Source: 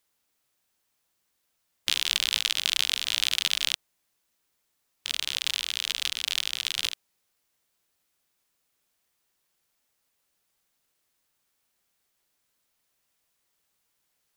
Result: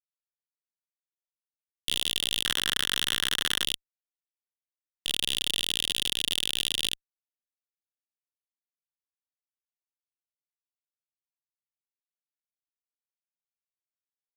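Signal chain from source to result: 2.45–3.64 bell 1700 Hz +7.5 dB 0.27 oct; in parallel at +2 dB: limiter -11 dBFS, peak gain reduction 9.5 dB; on the sum: fuzz box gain 35 dB, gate -36 dBFS; gain -3 dB

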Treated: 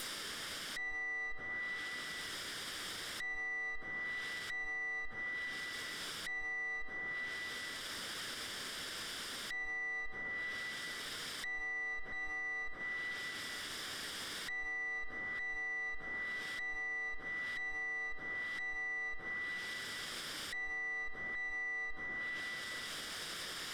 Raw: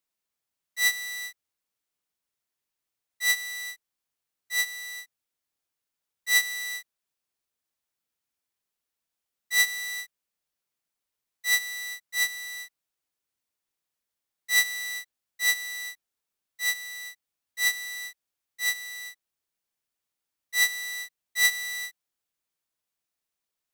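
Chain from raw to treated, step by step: minimum comb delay 0.58 ms; power-law curve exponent 0.35; low shelf 210 Hz -9 dB; notch 6600 Hz, Q 7.8; plate-style reverb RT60 3.1 s, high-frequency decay 0.8×, DRR 9 dB; treble ducked by the level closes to 940 Hz, closed at -28.5 dBFS; limiter -39 dBFS, peak gain reduction 14.5 dB; gain +4 dB

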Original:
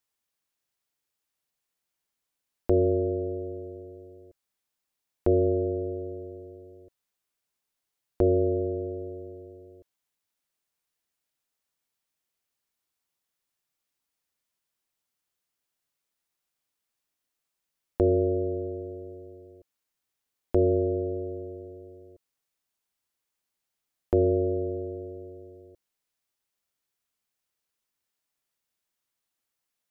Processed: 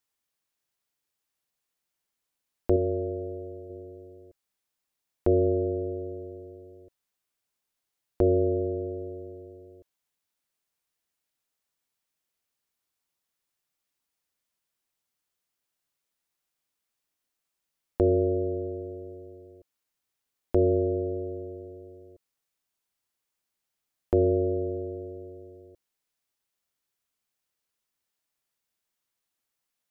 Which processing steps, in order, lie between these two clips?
2.76–3.7 bell 200 Hz -6 dB 2.8 oct

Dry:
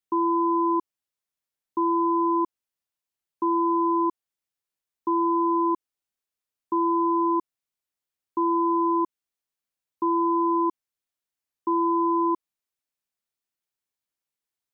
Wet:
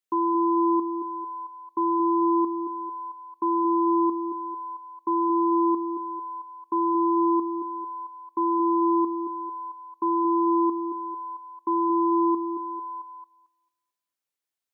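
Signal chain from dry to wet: low shelf 180 Hz -9 dB; delay with a stepping band-pass 0.223 s, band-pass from 320 Hz, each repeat 0.7 oct, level -6 dB; on a send at -17 dB: reverb RT60 0.40 s, pre-delay 3 ms

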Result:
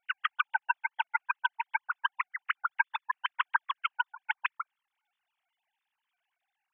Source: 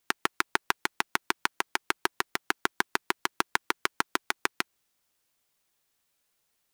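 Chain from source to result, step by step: sine-wave speech; gain -1.5 dB

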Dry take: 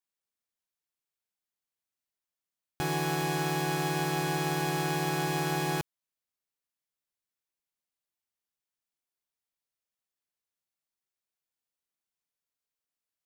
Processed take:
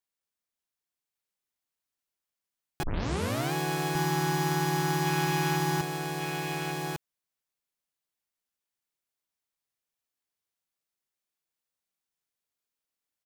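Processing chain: 5.05–5.57 bell 2500 Hz +5.5 dB 0.74 oct; echo 1.152 s -3.5 dB; 2.83 tape start 0.70 s

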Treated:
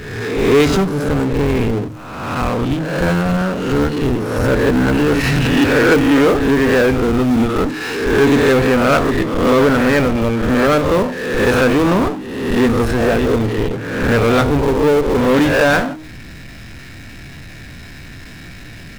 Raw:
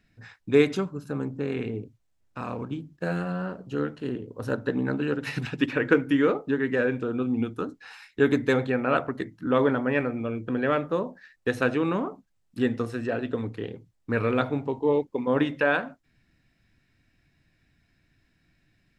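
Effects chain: spectral swells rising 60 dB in 0.70 s; in parallel at -6.5 dB: Schmitt trigger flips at -24.5 dBFS; on the sum: de-hum 155.6 Hz, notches 2; power-law curve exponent 0.5; gain +1.5 dB

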